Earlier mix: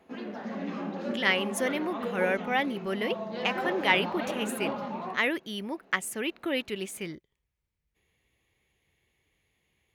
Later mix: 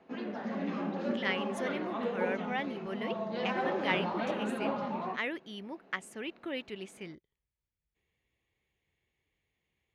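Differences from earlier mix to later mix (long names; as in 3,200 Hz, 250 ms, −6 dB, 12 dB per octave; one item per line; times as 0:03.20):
speech −7.5 dB
master: add high-frequency loss of the air 61 metres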